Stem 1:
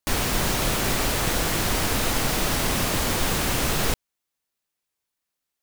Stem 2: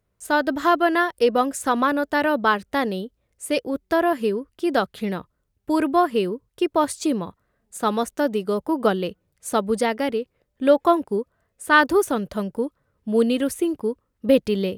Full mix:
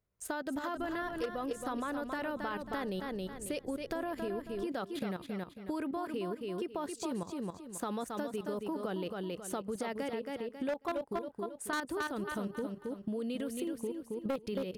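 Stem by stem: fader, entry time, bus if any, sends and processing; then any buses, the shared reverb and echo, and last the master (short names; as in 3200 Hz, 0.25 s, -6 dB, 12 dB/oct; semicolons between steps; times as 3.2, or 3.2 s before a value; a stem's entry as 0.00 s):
-13.0 dB, 0.70 s, no send, no echo send, elliptic low-pass 530 Hz; auto duck -11 dB, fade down 1.75 s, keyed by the second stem
-1.0 dB, 0.00 s, no send, echo send -6.5 dB, level quantiser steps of 14 dB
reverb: off
echo: feedback echo 0.272 s, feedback 27%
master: hard clip -18.5 dBFS, distortion -9 dB; compressor 5:1, threshold -34 dBFS, peak gain reduction 12.5 dB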